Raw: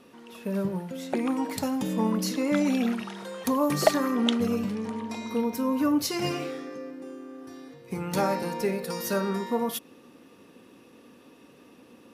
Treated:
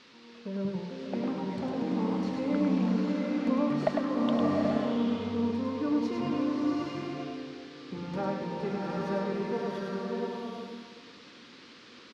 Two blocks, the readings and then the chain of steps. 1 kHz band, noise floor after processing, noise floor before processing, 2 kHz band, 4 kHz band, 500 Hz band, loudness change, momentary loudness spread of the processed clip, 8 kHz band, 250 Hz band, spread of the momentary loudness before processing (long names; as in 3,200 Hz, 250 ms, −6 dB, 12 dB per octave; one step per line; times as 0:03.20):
−4.0 dB, −52 dBFS, −54 dBFS, −5.5 dB, −8.5 dB, −3.0 dB, −3.0 dB, 17 LU, below −15 dB, −1.5 dB, 15 LU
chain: head-to-tape spacing loss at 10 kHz 31 dB
on a send: single-tap delay 102 ms −4.5 dB
on the sum: noise in a band 960–4,800 Hz −52 dBFS
slow-attack reverb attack 830 ms, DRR −1.5 dB
level −6 dB